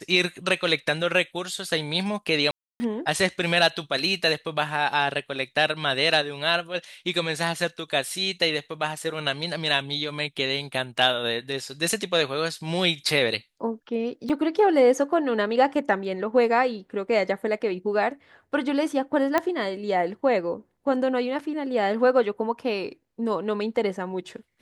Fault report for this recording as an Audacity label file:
2.510000	2.800000	drop-out 290 ms
14.290000	14.300000	drop-out 6.3 ms
19.380000	19.380000	click −9 dBFS

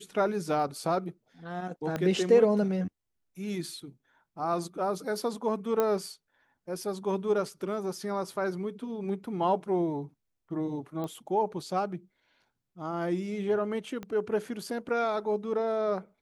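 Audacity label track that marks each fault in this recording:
1.960000	1.960000	click −18 dBFS
5.800000	5.800000	click −14 dBFS
11.040000	11.040000	click −24 dBFS
14.030000	14.030000	click −25 dBFS

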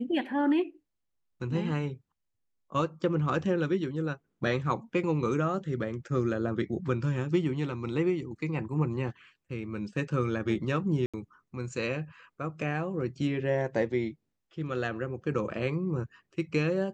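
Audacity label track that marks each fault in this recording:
11.060000	11.140000	drop-out 76 ms

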